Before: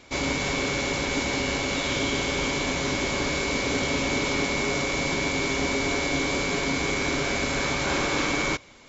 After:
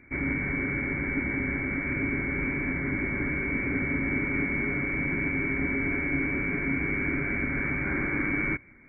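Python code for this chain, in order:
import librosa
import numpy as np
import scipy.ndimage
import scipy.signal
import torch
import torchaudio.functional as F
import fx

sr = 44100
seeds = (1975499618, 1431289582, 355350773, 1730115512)

y = fx.brickwall_lowpass(x, sr, high_hz=2400.0)
y = fx.band_shelf(y, sr, hz=730.0, db=-13.0, octaves=1.7)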